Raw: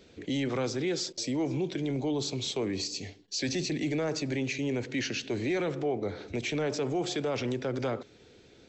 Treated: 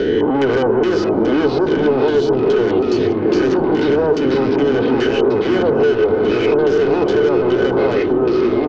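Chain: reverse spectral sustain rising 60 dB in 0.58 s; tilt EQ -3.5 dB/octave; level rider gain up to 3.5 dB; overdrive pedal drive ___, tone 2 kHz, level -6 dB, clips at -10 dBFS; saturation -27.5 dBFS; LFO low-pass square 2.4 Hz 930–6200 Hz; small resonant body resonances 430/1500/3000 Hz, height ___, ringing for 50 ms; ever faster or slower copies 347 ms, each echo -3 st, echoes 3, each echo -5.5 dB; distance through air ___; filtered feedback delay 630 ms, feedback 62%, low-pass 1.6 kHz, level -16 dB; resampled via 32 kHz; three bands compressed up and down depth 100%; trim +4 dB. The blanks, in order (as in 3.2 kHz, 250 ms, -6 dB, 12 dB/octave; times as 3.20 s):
17 dB, 16 dB, 110 m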